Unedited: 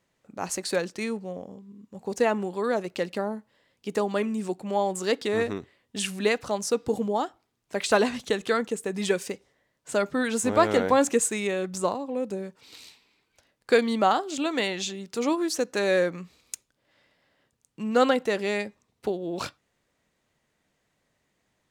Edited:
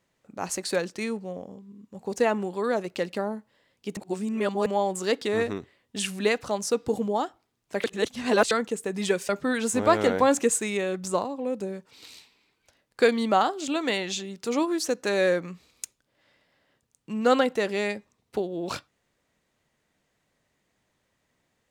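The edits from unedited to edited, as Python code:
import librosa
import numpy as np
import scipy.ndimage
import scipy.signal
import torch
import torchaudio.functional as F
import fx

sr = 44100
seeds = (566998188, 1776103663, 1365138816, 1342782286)

y = fx.edit(x, sr, fx.reverse_span(start_s=3.97, length_s=0.69),
    fx.reverse_span(start_s=7.84, length_s=0.67),
    fx.cut(start_s=9.29, length_s=0.7), tone=tone)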